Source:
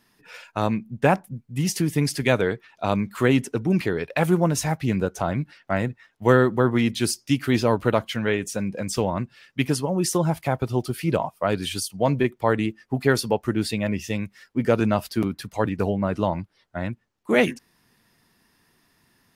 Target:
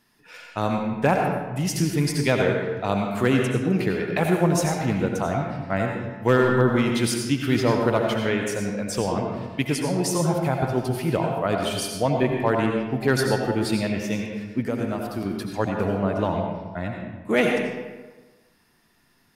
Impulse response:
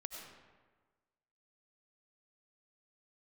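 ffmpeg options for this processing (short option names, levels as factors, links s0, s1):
-filter_complex "[0:a]asettb=1/sr,asplit=3[s0][s1][s2];[s0]atrim=end=14.634[s3];[s1]atrim=start=14.63:end=15.26,asetpts=PTS-STARTPTS,afade=t=in:d=0.004:c=qsin,afade=t=out:st=0.626:d=0.004:c=qsin,acrossover=split=2000|7300[s4][s5][s6];[s4]acompressor=threshold=0.0631:ratio=4[s7];[s5]acompressor=threshold=0.00398:ratio=4[s8];[s6]acompressor=threshold=0.00398:ratio=4[s9];[s7][s8][s9]amix=inputs=3:normalize=0[s10];[s2]atrim=start=15.256[s11];[s3][s10]acrossfade=d=0.004:c1=hsin:c2=qsin[s12];[s12][s11]acrossfade=d=0.004:c1=qsin:c2=hsin,asoftclip=type=hard:threshold=0.447[s13];[1:a]atrim=start_sample=2205,asetrate=48510,aresample=44100[s14];[s13][s14]afir=irnorm=-1:irlink=0,volume=1.58"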